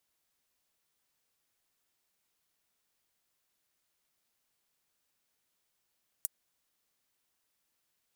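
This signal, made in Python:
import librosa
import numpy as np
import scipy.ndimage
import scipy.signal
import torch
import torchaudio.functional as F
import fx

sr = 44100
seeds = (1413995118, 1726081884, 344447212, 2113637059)

y = fx.drum_hat(sr, length_s=0.24, from_hz=8500.0, decay_s=0.03)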